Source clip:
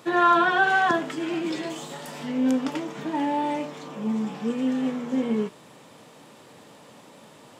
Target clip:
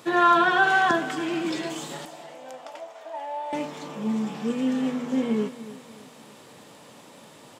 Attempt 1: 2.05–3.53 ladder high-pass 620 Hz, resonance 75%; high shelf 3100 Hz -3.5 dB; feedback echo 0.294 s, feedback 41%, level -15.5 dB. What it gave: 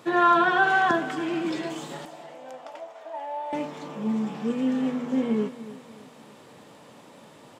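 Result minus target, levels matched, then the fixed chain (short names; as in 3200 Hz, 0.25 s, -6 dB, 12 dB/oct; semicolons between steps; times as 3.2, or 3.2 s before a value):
8000 Hz band -5.0 dB
2.05–3.53 ladder high-pass 620 Hz, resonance 75%; high shelf 3100 Hz +3.5 dB; feedback echo 0.294 s, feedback 41%, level -15.5 dB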